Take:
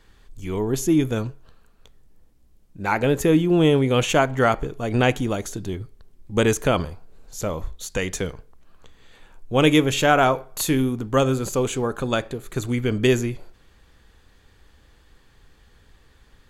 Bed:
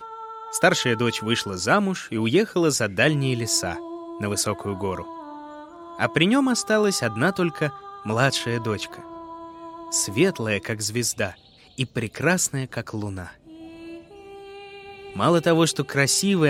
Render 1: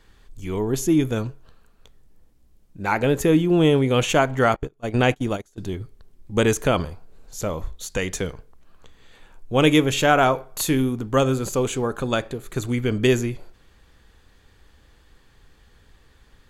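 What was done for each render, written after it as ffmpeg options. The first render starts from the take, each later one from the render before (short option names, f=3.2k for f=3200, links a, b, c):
-filter_complex "[0:a]asettb=1/sr,asplit=3[a][b][c];[a]atrim=end=4.564[d];[b]atrim=start=4.56:end=5.58,asetpts=PTS-STARTPTS,afade=t=in:d=0.004:c=qsin,afade=t=out:st=1.016:d=0.004:c=qsin,agate=range=-26dB:threshold=-26dB:ratio=16:release=100:detection=peak[e];[c]atrim=start=5.576[f];[d][e]acrossfade=d=0.004:c1=hsin:c2=qsin[g];[g][f]acrossfade=d=0.004:c1=qsin:c2=hsin"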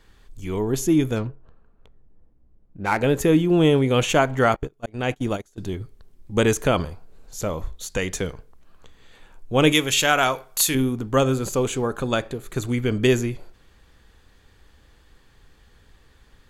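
-filter_complex "[0:a]asettb=1/sr,asplit=3[a][b][c];[a]atrim=end=1.164[d];[b]atrim=start=1.16:end=2.98,asetpts=PTS-STARTPTS,afade=t=in:d=0.004:c=qsin,afade=t=out:st=1.816:d=0.004:c=qsin,adynamicsmooth=sensitivity=7:basefreq=1.3k[e];[c]atrim=start=2.976[f];[d][e]acrossfade=d=0.004:c1=hsin:c2=qsin[g];[g][f]acrossfade=d=0.004:c1=qsin:c2=hsin,asettb=1/sr,asplit=3[h][i][j];[h]atrim=end=9.724[k];[i]atrim=start=9.72:end=10.75,asetpts=PTS-STARTPTS,afade=t=in:d=0.004:c=qsin,afade=t=out:st=1.026:d=0.004:c=qsin,tiltshelf=f=1.4k:g=-7[l];[j]atrim=start=10.746[m];[k][l]acrossfade=d=0.004:c1=hsin:c2=qsin[n];[n][m]acrossfade=d=0.004:c1=qsin:c2=hsin,asplit=2[o][p];[o]atrim=end=4.86,asetpts=PTS-STARTPTS,afade=t=out:st=4.856:d=0.004:c=hsin[q];[p]atrim=start=4.86,asetpts=PTS-STARTPTS,afade=t=in:d=0.4[r];[q][r]concat=n=2:v=0:a=1"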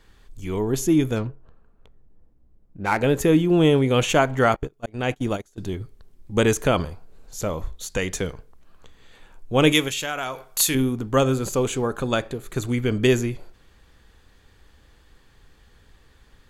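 -filter_complex "[0:a]asettb=1/sr,asplit=3[a][b][c];[a]atrim=end=9.884[d];[b]atrim=start=9.88:end=10.44,asetpts=PTS-STARTPTS,afade=t=in:d=0.004:c=qsin,afade=t=out:st=0.556:d=0.004:c=qsin,acompressor=threshold=-31dB:ratio=2:attack=3.2:release=140:knee=1:detection=peak[e];[c]atrim=start=10.436[f];[d][e]acrossfade=d=0.004:c1=hsin:c2=qsin[g];[g][f]acrossfade=d=0.004:c1=qsin:c2=hsin"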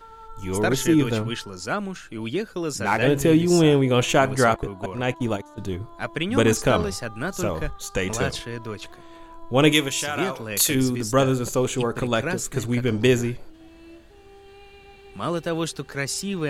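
-filter_complex "[1:a]volume=-7.5dB[a];[0:a][a]amix=inputs=2:normalize=0"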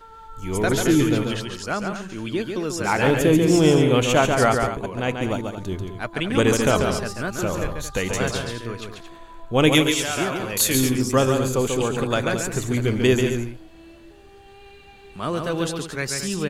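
-af "aecho=1:1:139.9|224.5:0.562|0.282"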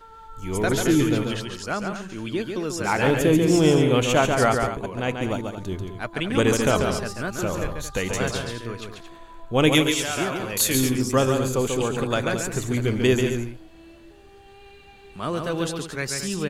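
-af "volume=-1.5dB"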